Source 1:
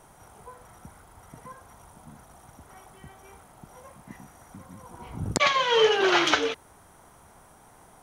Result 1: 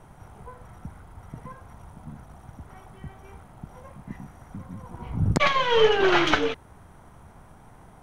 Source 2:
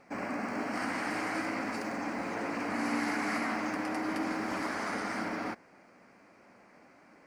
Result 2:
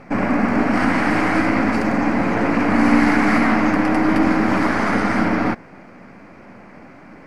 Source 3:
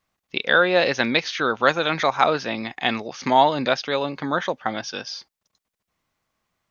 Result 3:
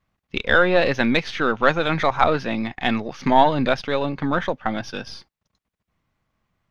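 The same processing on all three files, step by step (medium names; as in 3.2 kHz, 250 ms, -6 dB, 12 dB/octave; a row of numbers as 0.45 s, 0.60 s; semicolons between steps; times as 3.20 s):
partial rectifier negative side -3 dB; tone controls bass +9 dB, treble -9 dB; peak normalisation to -2 dBFS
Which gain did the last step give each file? +2.0 dB, +16.0 dB, +2.0 dB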